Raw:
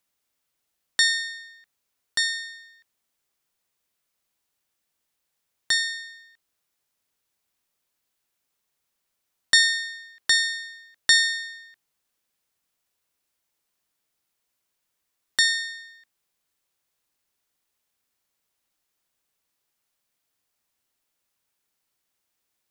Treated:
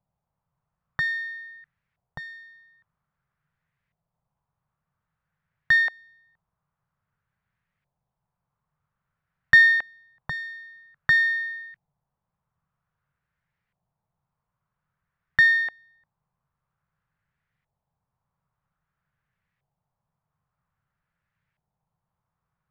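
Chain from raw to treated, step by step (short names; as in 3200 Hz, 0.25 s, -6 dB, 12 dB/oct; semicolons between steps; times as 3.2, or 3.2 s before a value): resonant low shelf 210 Hz +11.5 dB, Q 3; LFO low-pass saw up 0.51 Hz 760–2000 Hz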